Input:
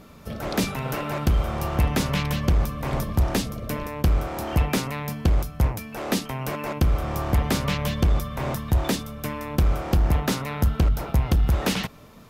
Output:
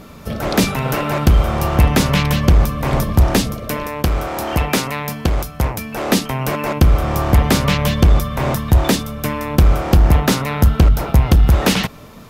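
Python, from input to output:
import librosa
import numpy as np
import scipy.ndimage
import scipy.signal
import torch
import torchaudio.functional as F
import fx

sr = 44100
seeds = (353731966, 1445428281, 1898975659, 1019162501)

y = fx.low_shelf(x, sr, hz=250.0, db=-7.5, at=(3.55, 5.78))
y = F.gain(torch.from_numpy(y), 9.0).numpy()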